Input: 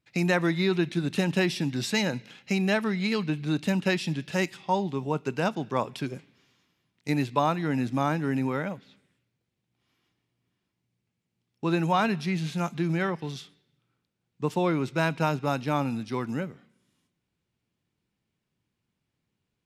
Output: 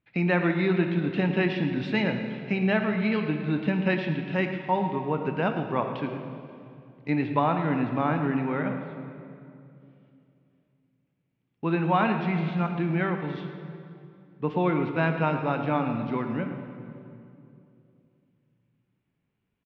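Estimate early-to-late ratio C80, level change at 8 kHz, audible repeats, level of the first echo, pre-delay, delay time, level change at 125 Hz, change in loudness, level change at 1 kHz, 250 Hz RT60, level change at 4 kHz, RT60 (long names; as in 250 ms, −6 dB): 7.0 dB, below −25 dB, 1, −13.0 dB, 3 ms, 111 ms, +1.5 dB, +1.0 dB, +1.5 dB, 3.3 s, −5.5 dB, 2.6 s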